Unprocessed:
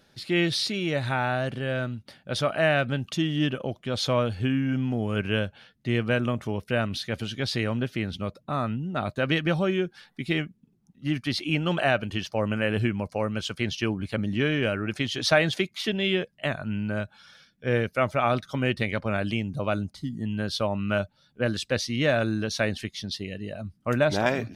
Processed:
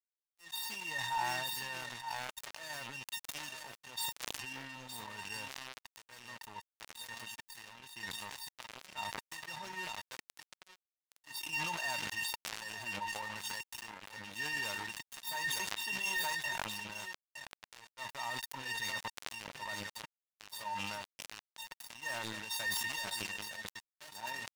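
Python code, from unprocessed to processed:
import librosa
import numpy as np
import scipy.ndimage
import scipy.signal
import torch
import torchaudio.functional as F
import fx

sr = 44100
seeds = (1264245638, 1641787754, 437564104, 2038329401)

y = fx.tracing_dist(x, sr, depth_ms=0.23)
y = fx.peak_eq(y, sr, hz=1100.0, db=3.5, octaves=0.53)
y = fx.leveller(y, sr, passes=3)
y = y + 10.0 ** (-8.5 / 20.0) * np.pad(y, (int(915 * sr / 1000.0), 0))[:len(y)]
y = fx.auto_swell(y, sr, attack_ms=569.0)
y = scipy.signal.sosfilt(scipy.signal.butter(2, 140.0, 'highpass', fs=sr, output='sos'), y)
y = fx.comb_fb(y, sr, f0_hz=910.0, decay_s=0.16, harmonics='all', damping=0.0, mix_pct=100)
y = np.sign(y) * np.maximum(np.abs(y) - 10.0 ** (-47.5 / 20.0), 0.0)
y = fx.low_shelf(y, sr, hz=400.0, db=-10.5)
y = np.clip(10.0 ** (33.0 / 20.0) * y, -1.0, 1.0) / 10.0 ** (33.0 / 20.0)
y = fx.sustainer(y, sr, db_per_s=20.0)
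y = y * 10.0 ** (2.0 / 20.0)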